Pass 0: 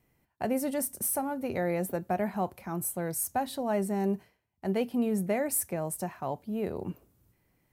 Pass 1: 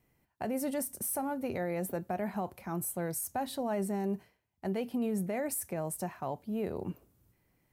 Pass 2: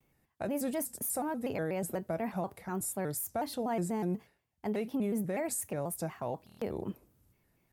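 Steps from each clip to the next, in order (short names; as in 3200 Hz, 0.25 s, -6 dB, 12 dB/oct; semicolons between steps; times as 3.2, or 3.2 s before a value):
limiter -24 dBFS, peak gain reduction 7 dB; gain -1.5 dB
stuck buffer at 6.45, samples 1024, times 6; shaped vibrato square 4.1 Hz, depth 160 cents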